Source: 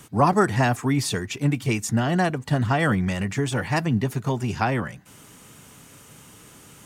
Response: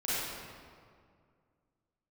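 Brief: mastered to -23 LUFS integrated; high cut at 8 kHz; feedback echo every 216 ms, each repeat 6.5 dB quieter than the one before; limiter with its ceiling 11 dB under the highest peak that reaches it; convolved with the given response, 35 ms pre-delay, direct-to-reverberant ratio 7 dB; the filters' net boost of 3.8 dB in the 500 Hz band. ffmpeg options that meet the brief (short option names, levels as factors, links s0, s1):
-filter_complex "[0:a]lowpass=8000,equalizer=f=500:t=o:g=5,alimiter=limit=0.168:level=0:latency=1,aecho=1:1:216|432|648|864|1080|1296:0.473|0.222|0.105|0.0491|0.0231|0.0109,asplit=2[s0][s1];[1:a]atrim=start_sample=2205,adelay=35[s2];[s1][s2]afir=irnorm=-1:irlink=0,volume=0.188[s3];[s0][s3]amix=inputs=2:normalize=0,volume=1.12"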